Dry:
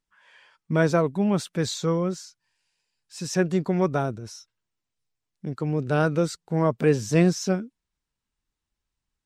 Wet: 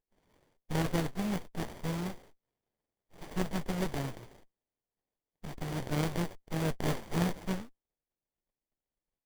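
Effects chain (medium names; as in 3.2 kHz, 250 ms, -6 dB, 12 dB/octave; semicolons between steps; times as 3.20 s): formants flattened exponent 0.1; sliding maximum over 33 samples; trim -8.5 dB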